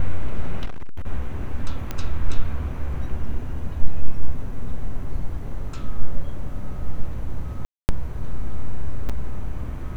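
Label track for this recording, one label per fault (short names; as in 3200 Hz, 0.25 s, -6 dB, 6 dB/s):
0.650000	1.070000	clipped -21 dBFS
1.910000	1.910000	pop -13 dBFS
7.650000	7.890000	gap 0.239 s
9.090000	9.100000	gap 6.1 ms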